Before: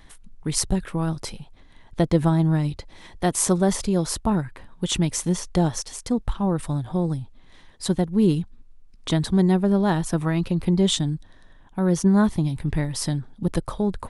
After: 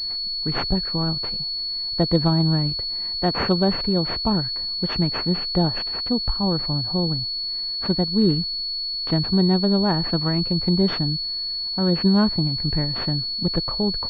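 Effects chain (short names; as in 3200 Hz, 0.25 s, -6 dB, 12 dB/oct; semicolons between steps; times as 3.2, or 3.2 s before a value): pulse-width modulation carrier 4400 Hz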